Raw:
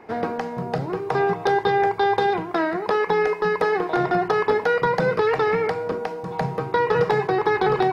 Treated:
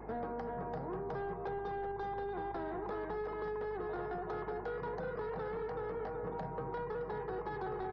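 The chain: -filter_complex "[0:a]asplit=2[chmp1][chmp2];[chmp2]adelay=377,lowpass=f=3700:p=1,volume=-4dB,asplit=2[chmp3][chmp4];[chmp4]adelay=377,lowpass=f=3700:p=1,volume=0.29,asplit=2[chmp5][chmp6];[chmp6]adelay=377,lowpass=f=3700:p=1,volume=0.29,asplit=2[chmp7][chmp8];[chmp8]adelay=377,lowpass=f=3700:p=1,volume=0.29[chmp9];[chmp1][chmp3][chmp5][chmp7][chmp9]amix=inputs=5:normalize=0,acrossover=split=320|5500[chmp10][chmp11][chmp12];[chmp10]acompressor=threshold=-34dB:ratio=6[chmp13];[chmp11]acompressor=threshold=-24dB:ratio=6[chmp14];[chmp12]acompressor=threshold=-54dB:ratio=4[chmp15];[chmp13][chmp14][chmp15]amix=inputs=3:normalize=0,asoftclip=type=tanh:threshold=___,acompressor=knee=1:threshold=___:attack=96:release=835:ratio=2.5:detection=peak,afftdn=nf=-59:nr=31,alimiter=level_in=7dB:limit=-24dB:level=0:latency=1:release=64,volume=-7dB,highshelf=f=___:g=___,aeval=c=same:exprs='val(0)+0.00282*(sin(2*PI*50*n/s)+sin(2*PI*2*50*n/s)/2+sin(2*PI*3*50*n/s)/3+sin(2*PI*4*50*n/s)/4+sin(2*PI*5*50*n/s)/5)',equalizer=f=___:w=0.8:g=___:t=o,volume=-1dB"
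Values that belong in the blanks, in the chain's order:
-25dB, -41dB, 3500, -11, 2500, -9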